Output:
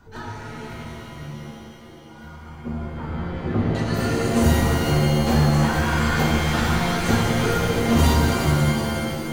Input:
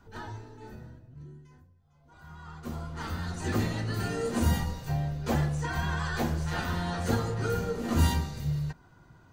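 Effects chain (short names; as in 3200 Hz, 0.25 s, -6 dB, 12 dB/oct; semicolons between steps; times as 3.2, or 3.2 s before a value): 2.36–3.75 Bessel low-pass 860 Hz, order 2; shimmer reverb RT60 3 s, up +7 st, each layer -2 dB, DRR 1 dB; gain +5.5 dB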